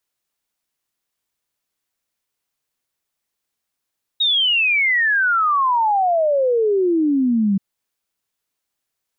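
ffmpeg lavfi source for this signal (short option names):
-f lavfi -i "aevalsrc='0.2*clip(min(t,3.38-t)/0.01,0,1)*sin(2*PI*3800*3.38/log(190/3800)*(exp(log(190/3800)*t/3.38)-1))':d=3.38:s=44100"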